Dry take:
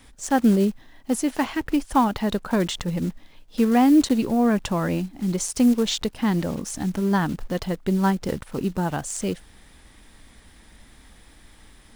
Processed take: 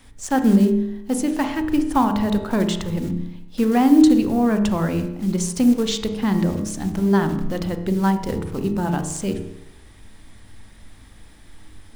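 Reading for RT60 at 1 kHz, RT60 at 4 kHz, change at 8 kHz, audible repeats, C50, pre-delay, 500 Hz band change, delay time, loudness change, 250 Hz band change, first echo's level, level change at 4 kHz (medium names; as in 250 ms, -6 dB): 0.80 s, 0.80 s, 0.0 dB, no echo, 9.0 dB, 31 ms, +2.0 dB, no echo, +2.5 dB, +3.0 dB, no echo, 0.0 dB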